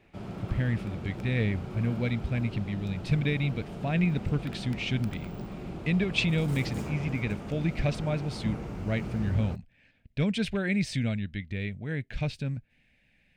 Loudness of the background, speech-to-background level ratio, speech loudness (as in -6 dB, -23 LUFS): -38.5 LUFS, 8.0 dB, -30.5 LUFS